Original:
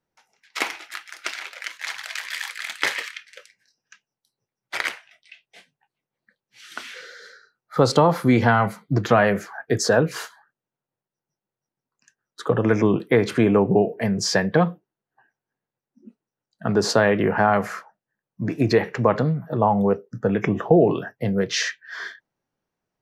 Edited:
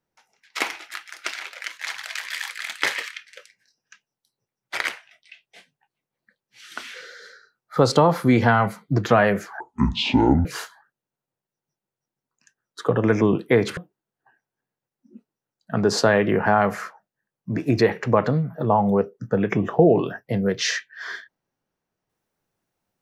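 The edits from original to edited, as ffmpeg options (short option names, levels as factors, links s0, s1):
-filter_complex "[0:a]asplit=4[s0][s1][s2][s3];[s0]atrim=end=9.604[s4];[s1]atrim=start=9.6:end=10.06,asetpts=PTS-STARTPTS,asetrate=23814,aresample=44100[s5];[s2]atrim=start=10.056:end=13.382[s6];[s3]atrim=start=14.688[s7];[s4][s5]acrossfade=d=0.004:c1=hsin:c2=hsin[s8];[s8][s6]acrossfade=d=0.004:c1=hsin:c2=hsin[s9];[s9][s7]acrossfade=d=0.004:c1=hsin:c2=hsin"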